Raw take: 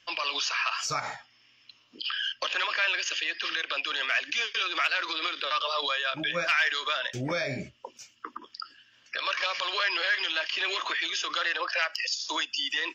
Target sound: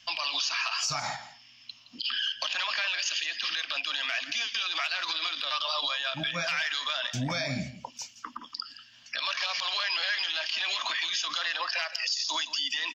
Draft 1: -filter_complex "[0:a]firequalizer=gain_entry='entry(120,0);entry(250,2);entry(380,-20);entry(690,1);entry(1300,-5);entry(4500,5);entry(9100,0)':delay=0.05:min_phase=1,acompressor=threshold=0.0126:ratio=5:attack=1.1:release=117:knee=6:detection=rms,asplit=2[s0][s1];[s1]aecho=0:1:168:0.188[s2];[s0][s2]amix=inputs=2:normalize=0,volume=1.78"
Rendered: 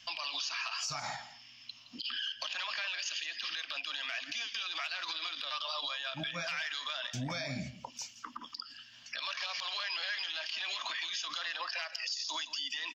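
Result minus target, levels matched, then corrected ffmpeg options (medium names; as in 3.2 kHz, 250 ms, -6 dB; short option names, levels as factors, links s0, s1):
compression: peak gain reduction +7 dB
-filter_complex "[0:a]firequalizer=gain_entry='entry(120,0);entry(250,2);entry(380,-20);entry(690,1);entry(1300,-5);entry(4500,5);entry(9100,0)':delay=0.05:min_phase=1,acompressor=threshold=0.0355:ratio=5:attack=1.1:release=117:knee=6:detection=rms,asplit=2[s0][s1];[s1]aecho=0:1:168:0.188[s2];[s0][s2]amix=inputs=2:normalize=0,volume=1.78"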